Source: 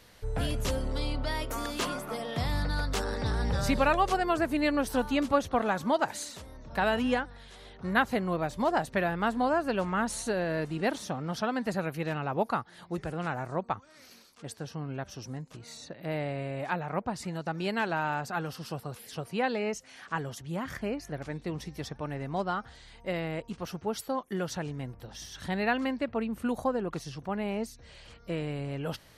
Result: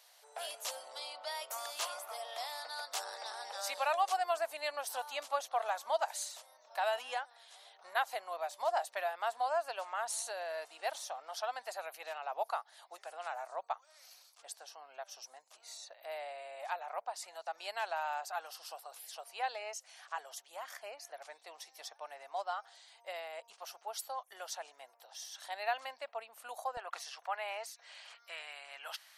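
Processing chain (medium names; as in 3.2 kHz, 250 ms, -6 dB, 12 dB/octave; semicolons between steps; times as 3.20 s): Chebyshev high-pass 670 Hz, order 4; peaking EQ 1.7 kHz -10 dB 2 oct, from 26.77 s 130 Hz, from 28.15 s 500 Hz; trim +1 dB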